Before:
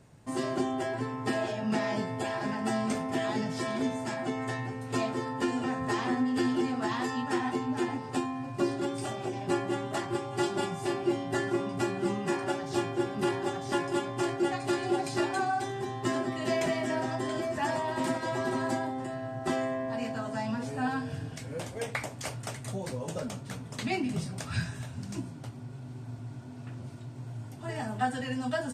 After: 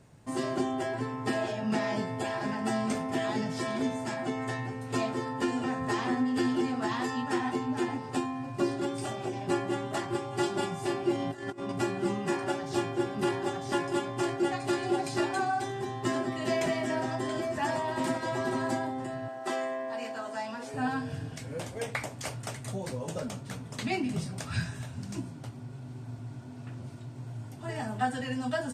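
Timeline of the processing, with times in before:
11.15–11.72 s: compressor with a negative ratio -35 dBFS, ratio -0.5
19.28–20.74 s: high-pass 390 Hz

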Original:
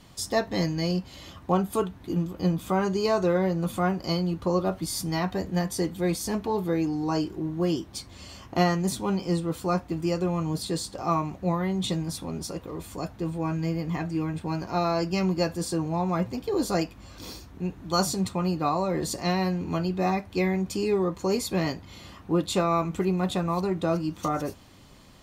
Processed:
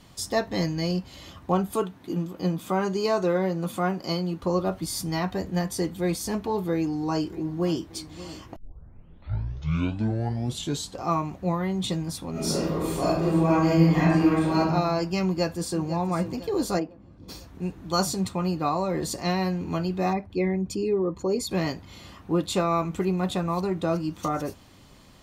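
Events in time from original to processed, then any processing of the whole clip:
1.75–4.43 s: high-pass 150 Hz
6.74–7.83 s: echo throw 580 ms, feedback 55%, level -16 dB
8.56 s: tape start 2.47 s
12.31–14.59 s: reverb throw, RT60 1 s, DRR -9.5 dB
15.25–15.87 s: echo throw 500 ms, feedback 50%, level -12.5 dB
16.78–17.28 s: band-pass filter 460 Hz -> 110 Hz, Q 0.75
20.13–21.51 s: resonances exaggerated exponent 1.5

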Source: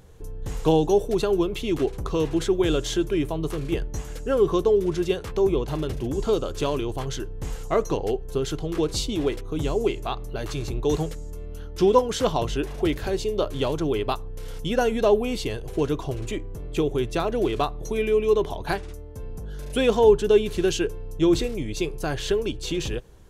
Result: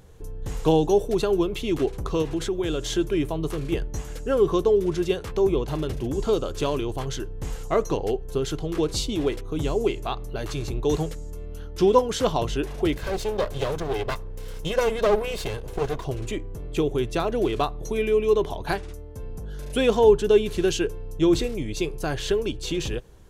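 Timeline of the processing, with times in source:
2.22–2.90 s: compression 2:1, threshold -25 dBFS
12.96–16.05 s: comb filter that takes the minimum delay 1.9 ms

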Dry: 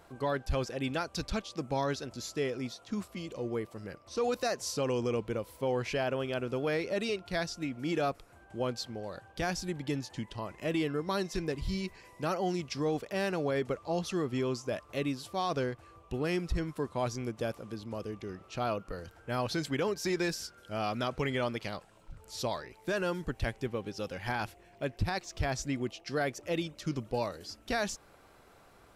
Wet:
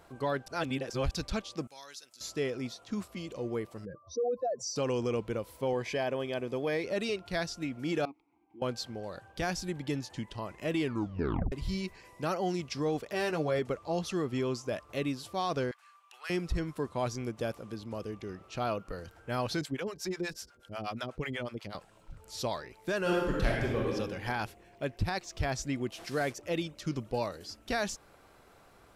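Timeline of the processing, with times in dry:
0.48–1.11 s: reverse
1.67–2.21 s: differentiator
3.85–4.76 s: spectral contrast enhancement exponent 2.7
5.73–6.84 s: comb of notches 1.4 kHz
8.05–8.62 s: vowel filter u
10.81 s: tape stop 0.71 s
13.08–13.59 s: doubling 13 ms -5.5 dB
15.71–16.30 s: high-pass 1.1 kHz 24 dB/octave
19.61–21.75 s: harmonic tremolo 8.2 Hz, depth 100%, crossover 550 Hz
23.00–23.93 s: reverb throw, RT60 1.2 s, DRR -4 dB
25.92–26.33 s: one-bit delta coder 64 kbps, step -42 dBFS

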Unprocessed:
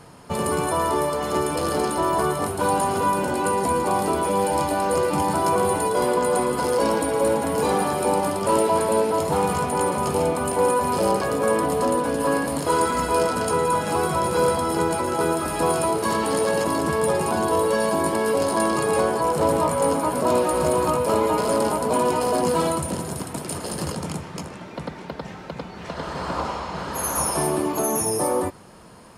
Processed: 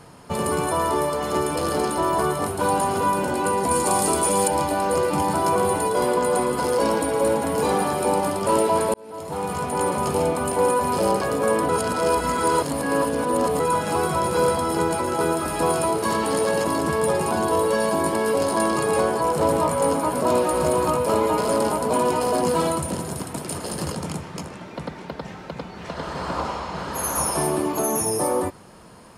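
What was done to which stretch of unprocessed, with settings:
3.71–4.48 s: peaking EQ 8.3 kHz +13 dB 1.6 oct
8.94–9.89 s: fade in
11.69–13.60 s: reverse

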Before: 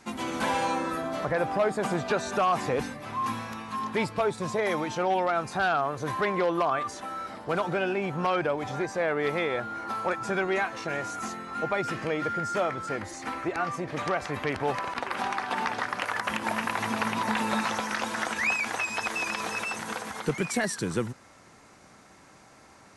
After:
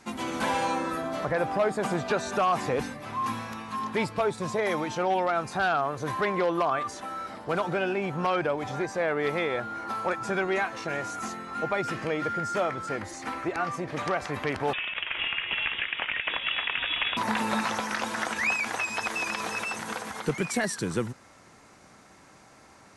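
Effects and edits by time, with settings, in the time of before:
14.73–17.17 s: frequency inversion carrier 3.6 kHz

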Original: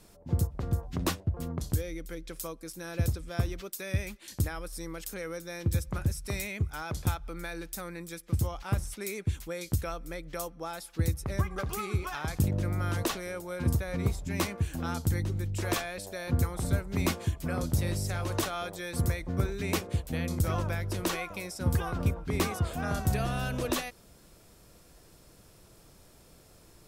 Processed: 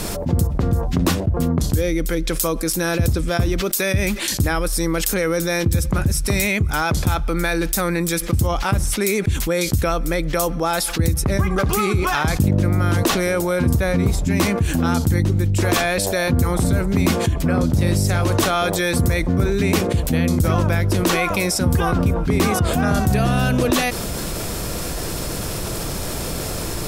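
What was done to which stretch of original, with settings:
17.27–17.81 s: treble shelf 5.5 kHz -9 dB
whole clip: dynamic bell 230 Hz, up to +5 dB, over -42 dBFS, Q 0.94; level flattener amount 70%; trim +5 dB

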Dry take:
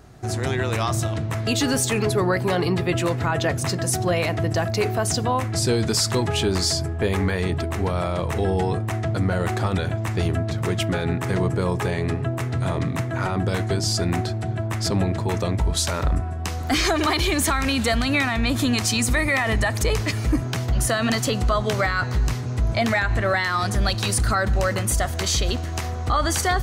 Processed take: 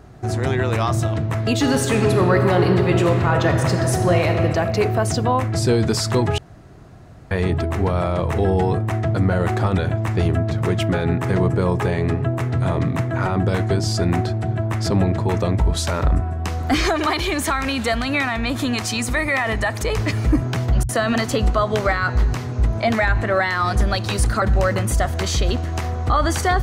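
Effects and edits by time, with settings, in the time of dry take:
1.58–4.42 s: reverb throw, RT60 2.7 s, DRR 3.5 dB
6.38–7.31 s: room tone
16.89–19.97 s: bass shelf 360 Hz -7 dB
20.83–24.42 s: bands offset in time lows, highs 60 ms, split 160 Hz
whole clip: treble shelf 2.8 kHz -8.5 dB; trim +4 dB

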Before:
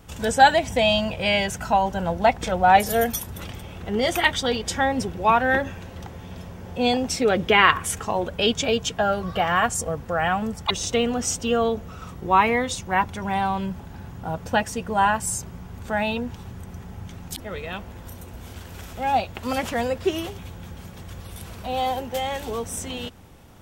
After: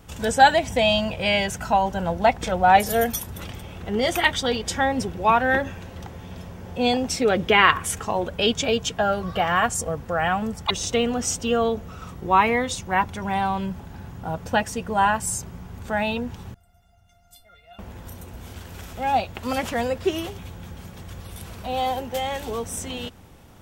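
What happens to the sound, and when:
16.54–17.79 s: feedback comb 700 Hz, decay 0.18 s, mix 100%

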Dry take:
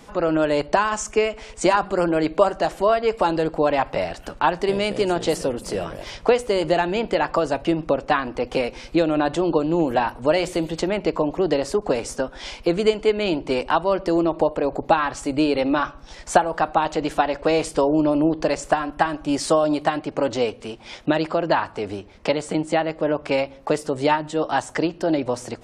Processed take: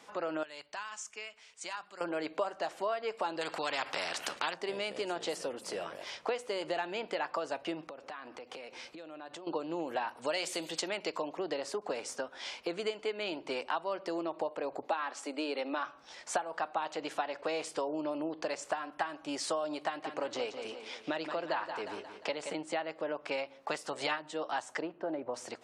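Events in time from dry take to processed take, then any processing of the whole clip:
0.43–2.01 s: amplifier tone stack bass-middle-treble 5-5-5
3.41–4.54 s: spectrum-flattening compressor 2:1
7.86–9.47 s: compression 16:1, threshold -31 dBFS
10.17–11.30 s: treble shelf 3.1 kHz +12 dB
14.86–15.86 s: elliptic high-pass 230 Hz
19.82–22.54 s: feedback delay 176 ms, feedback 48%, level -10.5 dB
23.69–24.18 s: spectral peaks clipped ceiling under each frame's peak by 13 dB
24.80–25.33 s: low-pass 1.8 kHz -> 1.1 kHz
whole clip: frequency weighting A; compression 2:1, threshold -27 dBFS; trim -7.5 dB

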